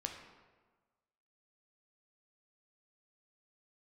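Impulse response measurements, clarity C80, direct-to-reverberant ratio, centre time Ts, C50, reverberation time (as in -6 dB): 7.5 dB, 2.5 dB, 34 ms, 5.5 dB, 1.4 s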